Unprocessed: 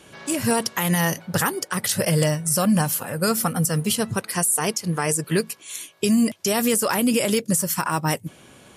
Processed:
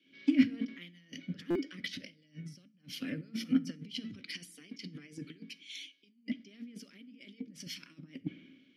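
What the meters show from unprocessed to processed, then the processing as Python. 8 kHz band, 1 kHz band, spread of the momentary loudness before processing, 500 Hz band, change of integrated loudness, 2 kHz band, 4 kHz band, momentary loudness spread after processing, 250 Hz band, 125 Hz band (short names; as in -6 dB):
-32.0 dB, -34.0 dB, 5 LU, -23.0 dB, -15.5 dB, -18.5 dB, -15.0 dB, 19 LU, -11.5 dB, -22.5 dB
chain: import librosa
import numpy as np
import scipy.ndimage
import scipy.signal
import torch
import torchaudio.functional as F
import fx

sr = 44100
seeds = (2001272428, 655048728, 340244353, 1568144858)

y = fx.high_shelf_res(x, sr, hz=6500.0, db=-7.0, q=3.0)
y = fx.over_compress(y, sr, threshold_db=-28.0, ratio=-0.5)
y = fx.vowel_filter(y, sr, vowel='i')
y = fx.rev_fdn(y, sr, rt60_s=0.63, lf_ratio=1.55, hf_ratio=0.85, size_ms=32.0, drr_db=15.0)
y = fx.buffer_glitch(y, sr, at_s=(1.5,), block=256, repeats=8)
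y = fx.band_widen(y, sr, depth_pct=100)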